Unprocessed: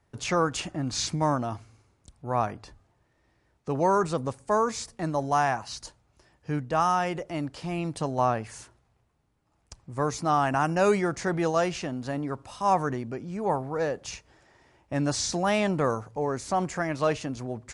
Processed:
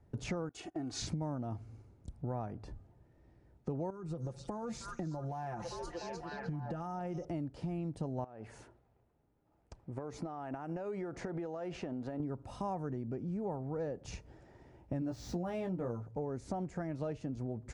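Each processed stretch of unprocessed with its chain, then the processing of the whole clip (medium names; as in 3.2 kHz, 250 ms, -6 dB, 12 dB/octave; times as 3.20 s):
0.49–1.02 s: high-pass 570 Hz 6 dB/octave + gate -44 dBFS, range -20 dB + comb 2.7 ms, depth 77%
3.90–7.25 s: comb 5.7 ms, depth 69% + repeats whose band climbs or falls 303 ms, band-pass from 5 kHz, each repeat -0.7 oct, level -3 dB + compression, threshold -34 dBFS
8.24–12.20 s: tone controls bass -11 dB, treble -8 dB + compression 12:1, threshold -35 dBFS
15.00–16.07 s: median filter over 5 samples + doubling 17 ms -4.5 dB
whole clip: tilt shelf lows +9 dB, about 860 Hz; compression 6:1, threshold -34 dBFS; band-stop 1.1 kHz, Q 9.9; trim -2 dB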